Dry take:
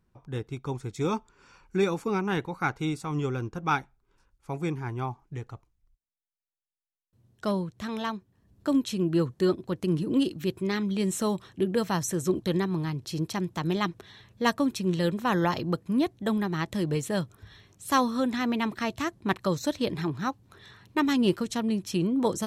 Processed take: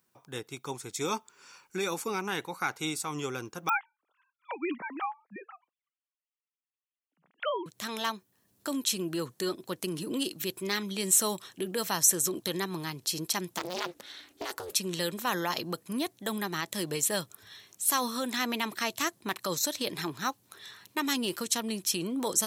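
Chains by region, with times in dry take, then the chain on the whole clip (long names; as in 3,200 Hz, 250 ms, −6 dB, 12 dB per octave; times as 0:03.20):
0:03.69–0:07.66: three sine waves on the formant tracks + de-essing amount 90%
0:13.58–0:14.76: ring modulation 180 Hz + compressor whose output falls as the input rises −32 dBFS + highs frequency-modulated by the lows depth 0.54 ms
whole clip: brickwall limiter −20 dBFS; high-pass filter 96 Hz; RIAA equalisation recording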